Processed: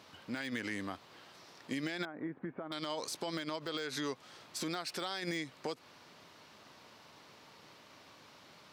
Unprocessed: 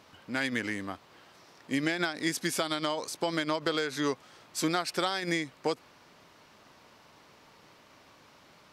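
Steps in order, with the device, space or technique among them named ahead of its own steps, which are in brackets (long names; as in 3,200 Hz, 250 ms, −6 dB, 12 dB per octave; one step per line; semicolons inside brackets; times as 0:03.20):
broadcast voice chain (high-pass filter 72 Hz; de-essing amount 75%; downward compressor 3 to 1, threshold −33 dBFS, peak gain reduction 7.5 dB; parametric band 4,000 Hz +3.5 dB 0.95 octaves; brickwall limiter −25 dBFS, peak gain reduction 6.5 dB)
0:02.05–0:02.72: Bessel low-pass filter 1,100 Hz, order 6
level −1 dB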